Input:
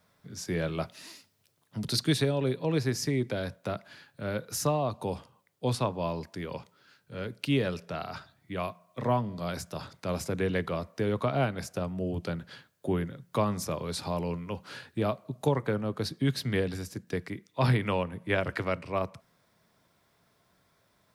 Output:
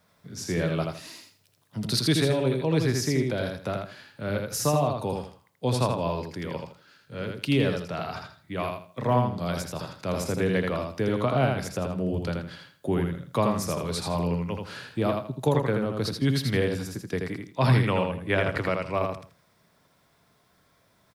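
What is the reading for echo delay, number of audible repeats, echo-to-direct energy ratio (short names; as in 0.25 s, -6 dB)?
81 ms, 3, -3.5 dB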